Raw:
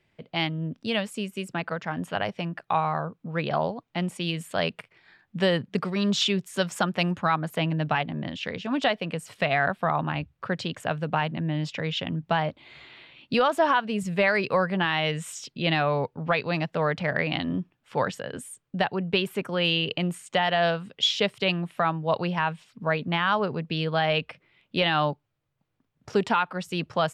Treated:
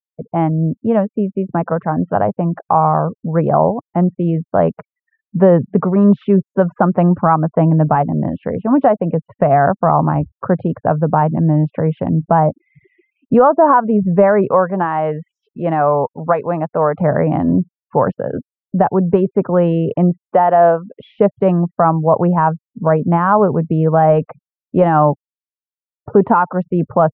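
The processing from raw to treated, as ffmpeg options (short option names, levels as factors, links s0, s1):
-filter_complex "[0:a]asettb=1/sr,asplit=3[s0][s1][s2];[s0]atrim=end=14.514[s3];[s1]atrim=start=14.51:end=17,asetpts=PTS-STARTPTS,afade=t=in:d=0.004:c=qsin,afade=t=out:st=2.486:d=0.004:c=qsin,lowshelf=f=330:g=-11[s4];[s2]atrim=start=16.996[s5];[s3][s4]acrossfade=d=0.004:c1=hsin:c2=qsin[s6];[s6][s5]acrossfade=d=0.004:c1=qsin:c2=hsin,asettb=1/sr,asplit=3[s7][s8][s9];[s7]atrim=end=20.304[s10];[s8]atrim=start=20.3:end=21,asetpts=PTS-STARTPTS,afade=t=in:d=0.004:c=qsin,afade=t=out:st=0.696:d=0.004:c=qsin,highpass=260,lowpass=7700[s11];[s9]atrim=start=20.996[s12];[s10][s11]acrossfade=d=0.004:c1=hsin:c2=qsin[s13];[s13][s12]acrossfade=d=0.004:c1=qsin:c2=hsin,afftfilt=real='re*gte(hypot(re,im),0.01)':imag='im*gte(hypot(re,im),0.01)':win_size=1024:overlap=0.75,lowpass=f=1100:w=0.5412,lowpass=f=1100:w=1.3066,alimiter=level_in=5.96:limit=0.891:release=50:level=0:latency=1,volume=0.891"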